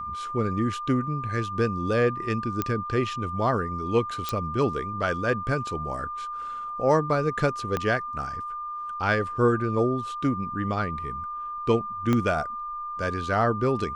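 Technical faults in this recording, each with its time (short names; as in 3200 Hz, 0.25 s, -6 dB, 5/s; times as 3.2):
tone 1200 Hz -31 dBFS
2.62 pop -11 dBFS
4.29 pop -13 dBFS
7.77 pop -13 dBFS
12.13 pop -12 dBFS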